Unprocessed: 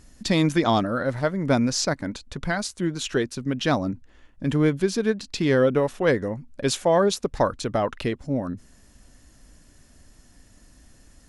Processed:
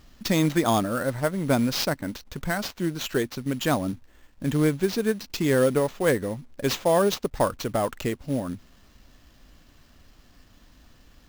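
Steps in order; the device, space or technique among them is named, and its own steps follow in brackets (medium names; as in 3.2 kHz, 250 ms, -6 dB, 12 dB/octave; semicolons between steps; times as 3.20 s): early companding sampler (sample-rate reducer 10 kHz, jitter 0%; companded quantiser 6-bit); trim -1.5 dB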